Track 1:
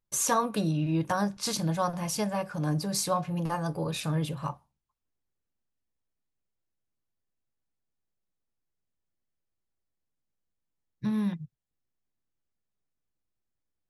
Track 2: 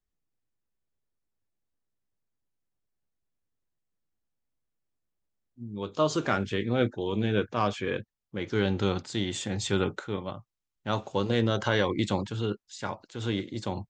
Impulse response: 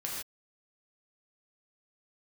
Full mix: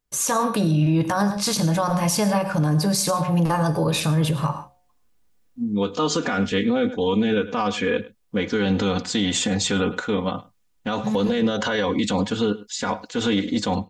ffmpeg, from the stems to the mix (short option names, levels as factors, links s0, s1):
-filter_complex "[0:a]bandreject=f=180.1:t=h:w=4,bandreject=f=360.2:t=h:w=4,bandreject=f=540.3:t=h:w=4,bandreject=f=720.4:t=h:w=4,bandreject=f=900.5:t=h:w=4,volume=1.26,asplit=3[s0][s1][s2];[s1]volume=0.224[s3];[s2]volume=0.178[s4];[1:a]aecho=1:1:4.1:0.93,volume=1.41,asplit=3[s5][s6][s7];[s6]volume=0.0708[s8];[s7]apad=whole_len=612914[s9];[s0][s9]sidechaincompress=threshold=0.0126:ratio=8:attack=16:release=133[s10];[2:a]atrim=start_sample=2205[s11];[s3][s11]afir=irnorm=-1:irlink=0[s12];[s4][s8]amix=inputs=2:normalize=0,aecho=0:1:104:1[s13];[s10][s5][s12][s13]amix=inputs=4:normalize=0,dynaudnorm=f=160:g=5:m=2.82,alimiter=limit=0.237:level=0:latency=1:release=59"